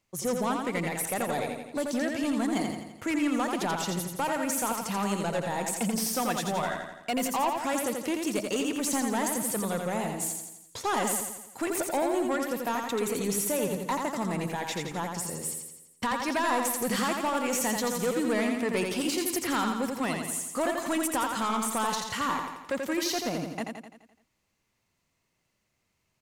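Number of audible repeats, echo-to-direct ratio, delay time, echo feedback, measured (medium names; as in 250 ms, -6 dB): 6, -3.0 dB, 85 ms, 54%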